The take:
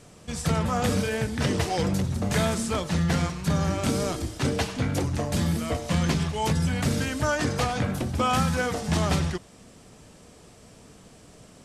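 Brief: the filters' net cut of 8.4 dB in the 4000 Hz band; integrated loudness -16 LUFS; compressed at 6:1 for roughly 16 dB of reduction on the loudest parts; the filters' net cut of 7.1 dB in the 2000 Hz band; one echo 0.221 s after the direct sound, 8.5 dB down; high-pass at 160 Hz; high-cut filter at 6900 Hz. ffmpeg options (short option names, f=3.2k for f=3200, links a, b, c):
-af "highpass=160,lowpass=6.9k,equalizer=f=2k:t=o:g=-8,equalizer=f=4k:t=o:g=-8,acompressor=threshold=-41dB:ratio=6,aecho=1:1:221:0.376,volume=27.5dB"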